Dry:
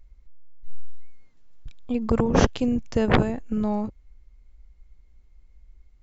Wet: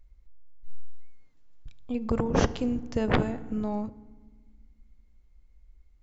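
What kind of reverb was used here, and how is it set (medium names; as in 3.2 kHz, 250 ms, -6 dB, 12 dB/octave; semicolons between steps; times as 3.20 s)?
FDN reverb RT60 1.4 s, low-frequency decay 1.55×, high-frequency decay 0.55×, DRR 15.5 dB; trim -5 dB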